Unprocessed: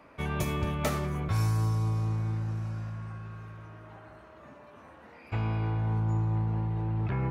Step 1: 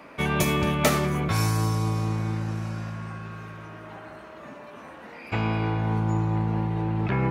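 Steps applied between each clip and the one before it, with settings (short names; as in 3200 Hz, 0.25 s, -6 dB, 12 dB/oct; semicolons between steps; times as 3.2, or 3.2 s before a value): EQ curve 100 Hz 0 dB, 180 Hz +9 dB, 1200 Hz +8 dB, 2300 Hz +11 dB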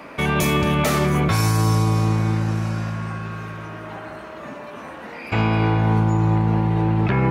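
limiter -17.5 dBFS, peak gain reduction 10.5 dB; gain +7.5 dB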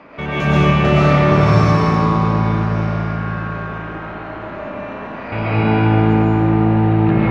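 air absorption 200 m; reverb RT60 3.8 s, pre-delay 75 ms, DRR -10 dB; gain -3 dB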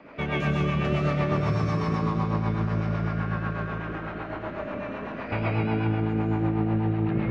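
compressor 4:1, threshold -18 dBFS, peak gain reduction 9.5 dB; rotary speaker horn 8 Hz; gain -3 dB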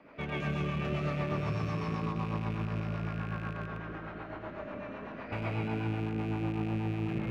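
rattling part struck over -29 dBFS, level -29 dBFS; gain -8 dB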